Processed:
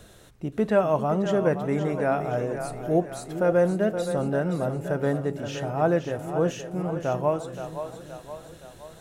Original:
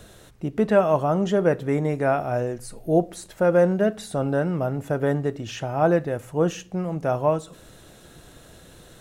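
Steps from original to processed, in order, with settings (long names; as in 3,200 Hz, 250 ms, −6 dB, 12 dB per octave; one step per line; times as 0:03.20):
echo with a time of its own for lows and highs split 370 Hz, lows 399 ms, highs 521 ms, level −9 dB
level −3 dB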